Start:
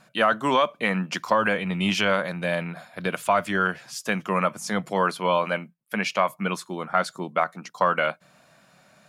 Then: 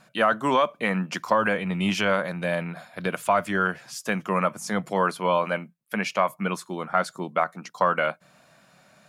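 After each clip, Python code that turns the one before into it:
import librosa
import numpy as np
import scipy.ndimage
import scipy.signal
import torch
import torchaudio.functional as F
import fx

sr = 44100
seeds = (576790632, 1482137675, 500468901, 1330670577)

y = fx.dynamic_eq(x, sr, hz=3600.0, q=0.95, threshold_db=-40.0, ratio=4.0, max_db=-4)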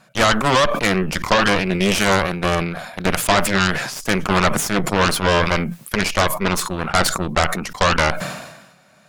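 y = fx.cheby_harmonics(x, sr, harmonics=(8,), levels_db=(-10,), full_scale_db=-8.0)
y = fx.sustainer(y, sr, db_per_s=53.0)
y = y * librosa.db_to_amplitude(3.0)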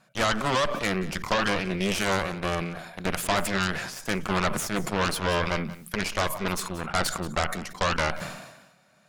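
y = x + 10.0 ** (-16.5 / 20.0) * np.pad(x, (int(181 * sr / 1000.0), 0))[:len(x)]
y = y * librosa.db_to_amplitude(-9.0)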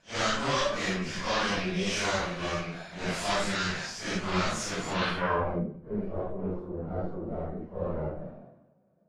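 y = fx.phase_scramble(x, sr, seeds[0], window_ms=200)
y = fx.filter_sweep_lowpass(y, sr, from_hz=6000.0, to_hz=460.0, start_s=4.9, end_s=5.63, q=1.7)
y = y * librosa.db_to_amplitude(-3.5)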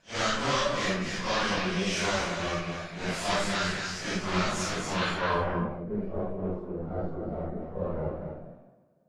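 y = x + 10.0 ** (-7.0 / 20.0) * np.pad(x, (int(244 * sr / 1000.0), 0))[:len(x)]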